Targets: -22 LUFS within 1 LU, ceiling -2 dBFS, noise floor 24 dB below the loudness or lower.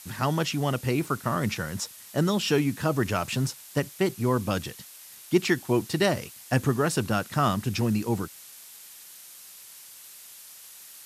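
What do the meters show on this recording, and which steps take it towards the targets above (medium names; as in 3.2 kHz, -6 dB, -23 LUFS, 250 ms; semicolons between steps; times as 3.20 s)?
noise floor -47 dBFS; noise floor target -51 dBFS; loudness -27.0 LUFS; peak level -8.5 dBFS; loudness target -22.0 LUFS
-> noise reduction 6 dB, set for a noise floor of -47 dBFS; trim +5 dB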